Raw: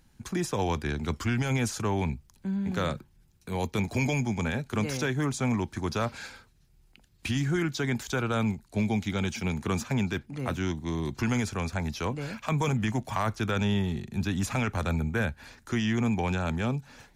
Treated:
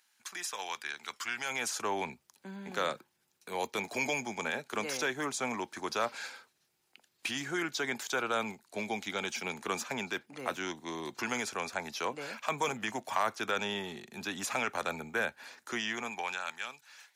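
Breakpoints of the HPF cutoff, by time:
1.1 s 1300 Hz
1.92 s 470 Hz
15.75 s 470 Hz
16.6 s 1500 Hz

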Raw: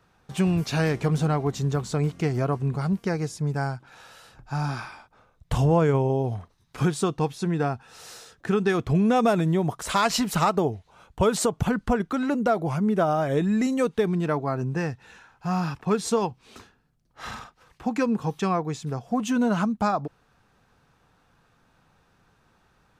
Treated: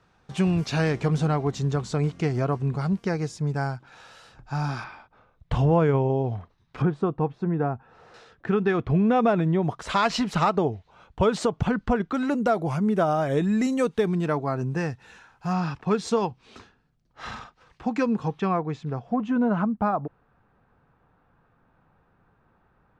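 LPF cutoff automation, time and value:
7100 Hz
from 4.84 s 3500 Hz
from 6.82 s 1300 Hz
from 8.14 s 2700 Hz
from 9.63 s 4500 Hz
from 12.15 s 11000 Hz
from 15.53 s 5500 Hz
from 18.28 s 2800 Hz
from 19.16 s 1600 Hz

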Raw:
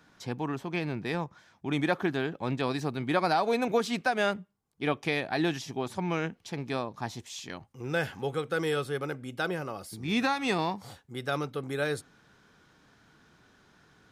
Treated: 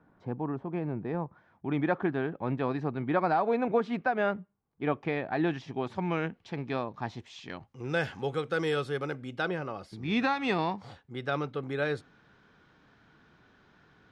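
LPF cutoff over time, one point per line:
1.14 s 1000 Hz
1.74 s 1700 Hz
5.28 s 1700 Hz
5.84 s 3000 Hz
7.41 s 3000 Hz
7.94 s 6200 Hz
9.02 s 6200 Hz
9.61 s 3500 Hz

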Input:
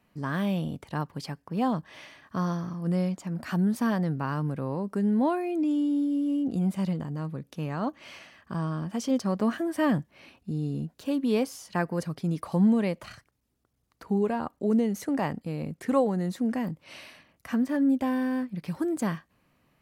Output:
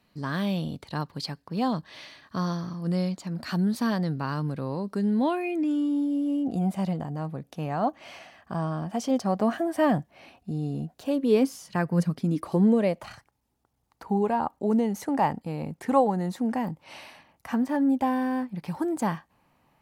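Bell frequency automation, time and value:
bell +11.5 dB 0.47 oct
5.17 s 4200 Hz
6.11 s 730 Hz
11.08 s 730 Hz
11.77 s 120 Hz
13.08 s 850 Hz

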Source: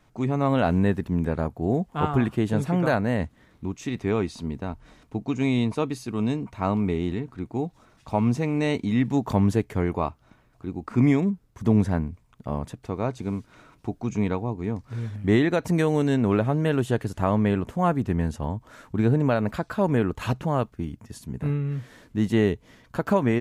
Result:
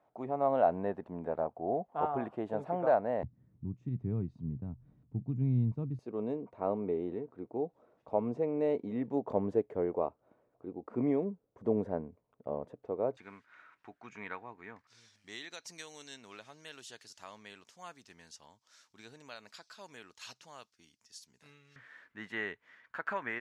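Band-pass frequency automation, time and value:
band-pass, Q 2.6
670 Hz
from 3.23 s 130 Hz
from 5.99 s 510 Hz
from 13.17 s 1700 Hz
from 14.87 s 5300 Hz
from 21.76 s 1700 Hz

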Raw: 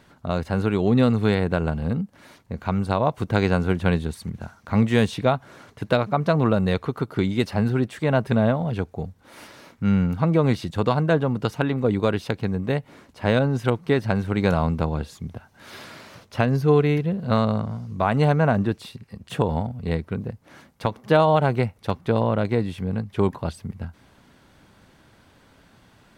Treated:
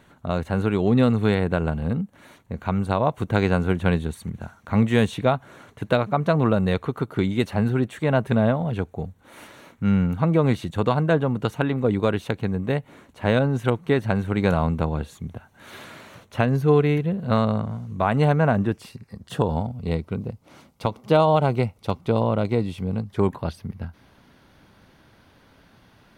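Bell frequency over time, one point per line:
bell -13 dB 0.25 oct
18.55 s 5000 Hz
19.67 s 1700 Hz
23.02 s 1700 Hz
23.45 s 7700 Hz

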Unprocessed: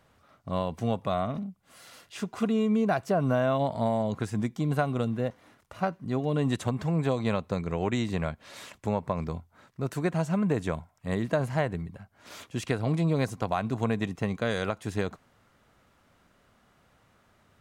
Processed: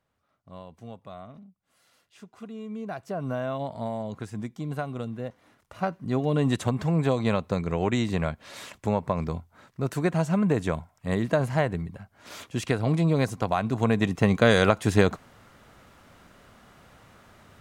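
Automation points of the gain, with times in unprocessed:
2.49 s -14 dB
3.28 s -5 dB
5.23 s -5 dB
6.13 s +3 dB
13.73 s +3 dB
14.41 s +10 dB

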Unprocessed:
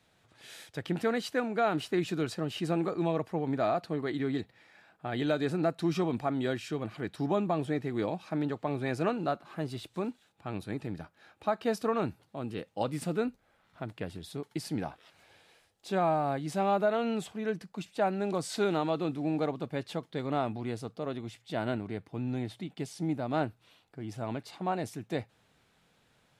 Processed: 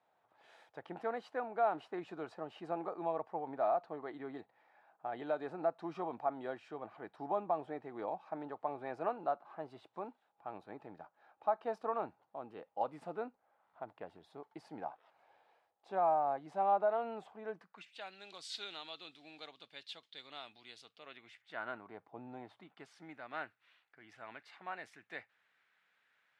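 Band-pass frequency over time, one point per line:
band-pass, Q 2.2
17.55 s 830 Hz
18.03 s 3600 Hz
20.77 s 3600 Hz
22.18 s 740 Hz
23.18 s 1800 Hz

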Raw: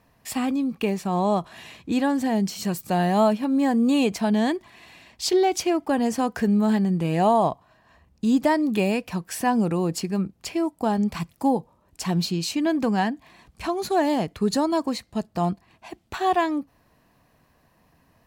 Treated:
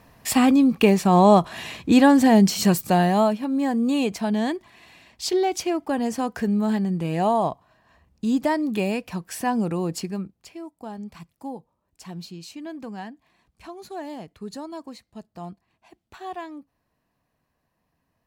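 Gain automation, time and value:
2.7 s +8 dB
3.33 s -2 dB
10.06 s -2 dB
10.49 s -13 dB

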